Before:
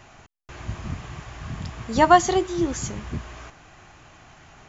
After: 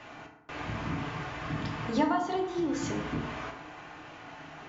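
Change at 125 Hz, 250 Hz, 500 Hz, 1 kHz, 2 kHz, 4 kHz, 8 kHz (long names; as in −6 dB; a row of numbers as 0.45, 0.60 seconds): −5.0 dB, −4.0 dB, −9.5 dB, −11.5 dB, −6.5 dB, −7.5 dB, can't be measured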